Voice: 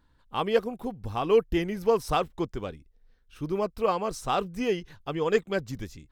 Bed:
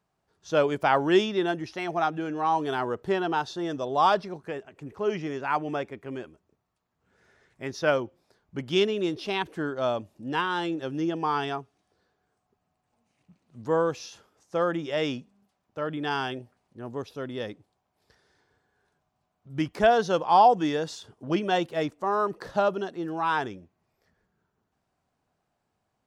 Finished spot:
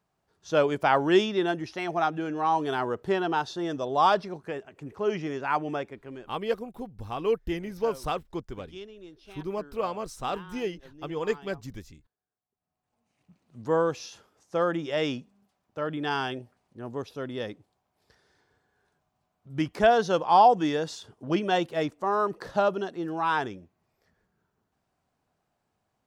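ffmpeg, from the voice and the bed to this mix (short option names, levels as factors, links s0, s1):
-filter_complex "[0:a]adelay=5950,volume=0.596[s0];[1:a]volume=9.44,afade=t=out:st=5.64:d=0.92:silence=0.105925,afade=t=in:st=12.52:d=0.88:silence=0.105925[s1];[s0][s1]amix=inputs=2:normalize=0"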